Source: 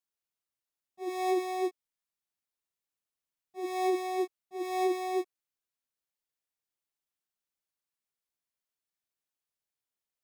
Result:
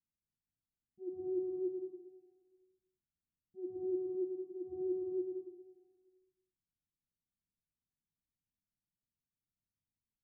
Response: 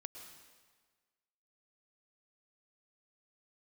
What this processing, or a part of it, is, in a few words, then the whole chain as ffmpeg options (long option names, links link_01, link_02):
club heard from the street: -filter_complex "[0:a]alimiter=limit=-23dB:level=0:latency=1:release=184,lowpass=frequency=230:width=0.5412,lowpass=frequency=230:width=1.3066[link_01];[1:a]atrim=start_sample=2205[link_02];[link_01][link_02]afir=irnorm=-1:irlink=0,volume=15.5dB"